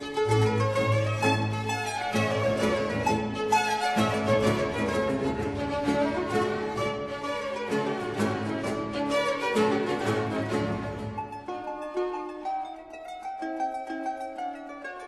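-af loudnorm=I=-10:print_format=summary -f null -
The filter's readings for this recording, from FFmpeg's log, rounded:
Input Integrated:    -28.6 LUFS
Input True Peak:     -11.3 dBTP
Input LRA:             8.4 LU
Input Threshold:     -38.7 LUFS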